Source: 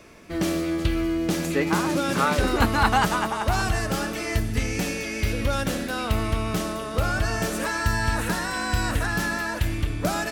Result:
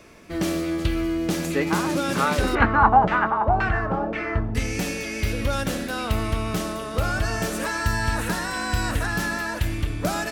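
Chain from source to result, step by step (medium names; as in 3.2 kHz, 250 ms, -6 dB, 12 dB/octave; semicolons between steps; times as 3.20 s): 2.55–4.55 s: LFO low-pass saw down 1.9 Hz 620–2300 Hz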